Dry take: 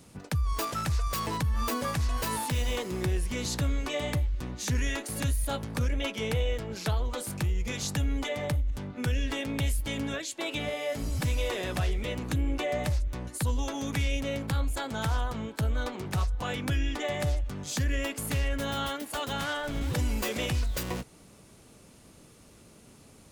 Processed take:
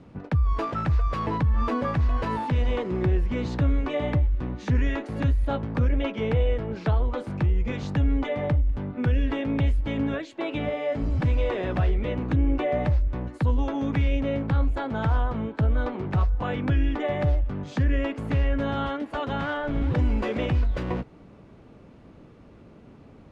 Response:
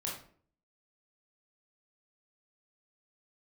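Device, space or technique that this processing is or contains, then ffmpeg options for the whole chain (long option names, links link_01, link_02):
phone in a pocket: -af "lowpass=3000,equalizer=frequency=290:width_type=o:width=0.36:gain=2,highshelf=frequency=2100:gain=-11,volume=6dB"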